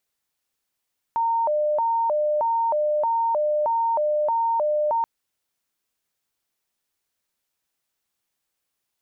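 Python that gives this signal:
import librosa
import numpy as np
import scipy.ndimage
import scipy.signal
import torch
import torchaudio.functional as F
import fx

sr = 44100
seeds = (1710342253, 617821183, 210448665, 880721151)

y = fx.siren(sr, length_s=3.88, kind='hi-lo', low_hz=601.0, high_hz=919.0, per_s=1.6, wave='sine', level_db=-19.0)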